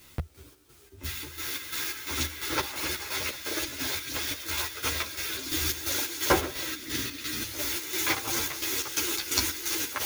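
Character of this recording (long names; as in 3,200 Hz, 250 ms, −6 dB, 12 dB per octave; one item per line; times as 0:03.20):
a quantiser's noise floor 10 bits, dither triangular
chopped level 2.9 Hz, depth 60%, duty 55%
a shimmering, thickened sound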